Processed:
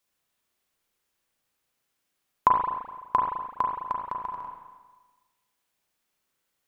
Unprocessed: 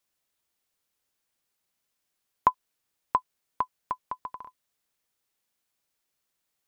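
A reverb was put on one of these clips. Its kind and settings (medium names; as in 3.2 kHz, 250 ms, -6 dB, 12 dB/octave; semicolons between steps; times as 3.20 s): spring tank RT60 1.3 s, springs 34/42 ms, chirp 65 ms, DRR -0.5 dB; trim +1 dB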